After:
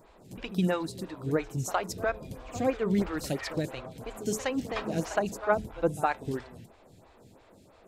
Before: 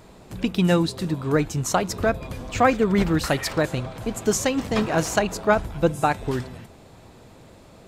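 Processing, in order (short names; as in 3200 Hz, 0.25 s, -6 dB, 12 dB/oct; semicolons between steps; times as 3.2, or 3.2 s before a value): de-hum 214.9 Hz, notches 2; pre-echo 65 ms -14.5 dB; photocell phaser 3 Hz; gain -5.5 dB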